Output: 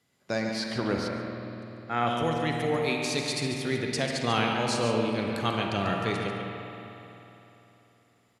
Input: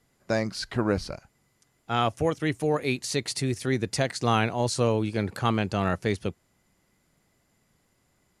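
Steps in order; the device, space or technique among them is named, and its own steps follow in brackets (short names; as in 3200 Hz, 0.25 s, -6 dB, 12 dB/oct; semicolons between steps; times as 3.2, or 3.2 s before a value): PA in a hall (HPF 100 Hz; bell 3300 Hz +6 dB 1.4 oct; echo 0.142 s -9 dB; reverb RT60 2.4 s, pre-delay 35 ms, DRR 5.5 dB); 1.08–2.07 resonant high shelf 2500 Hz -7 dB, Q 3; spring tank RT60 3.4 s, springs 50 ms, chirp 50 ms, DRR 3.5 dB; gain -5 dB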